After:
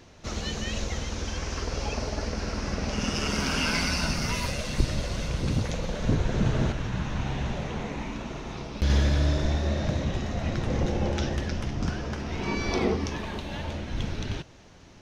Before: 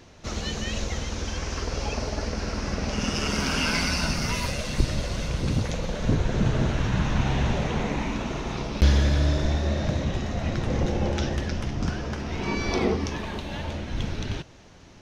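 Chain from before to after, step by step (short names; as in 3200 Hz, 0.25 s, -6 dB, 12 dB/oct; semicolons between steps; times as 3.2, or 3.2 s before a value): 6.72–8.9 flange 1.3 Hz, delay 4.8 ms, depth 8.4 ms, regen -78%; gain -1.5 dB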